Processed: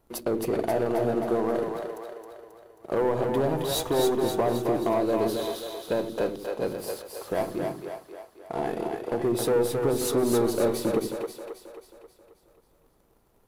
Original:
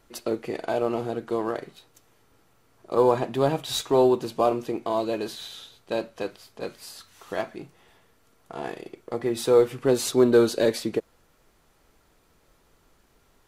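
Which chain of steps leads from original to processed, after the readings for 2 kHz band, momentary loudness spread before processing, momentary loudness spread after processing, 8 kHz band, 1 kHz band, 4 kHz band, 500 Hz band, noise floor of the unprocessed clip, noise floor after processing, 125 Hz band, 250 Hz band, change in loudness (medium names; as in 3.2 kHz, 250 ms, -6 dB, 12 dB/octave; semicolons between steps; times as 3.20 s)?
-1.5 dB, 18 LU, 15 LU, +0.5 dB, -1.0 dB, -2.0 dB, -1.5 dB, -63 dBFS, -64 dBFS, +1.0 dB, -0.5 dB, -2.0 dB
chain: single-diode clipper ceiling -19 dBFS; high-order bell 3.3 kHz -8.5 dB 2.9 oct; compression 4:1, threshold -28 dBFS, peak gain reduction 11.5 dB; waveshaping leveller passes 2; on a send: two-band feedback delay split 390 Hz, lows 82 ms, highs 268 ms, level -4 dB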